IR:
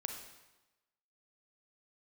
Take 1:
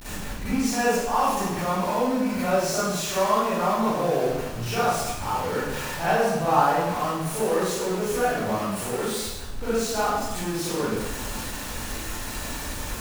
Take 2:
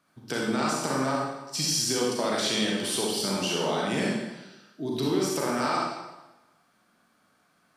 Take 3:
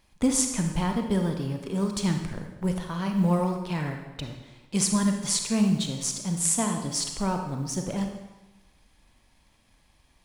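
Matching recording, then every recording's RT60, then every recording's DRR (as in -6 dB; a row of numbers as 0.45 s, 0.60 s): 3; 1.0 s, 1.0 s, 1.0 s; -13.0 dB, -4.0 dB, 4.0 dB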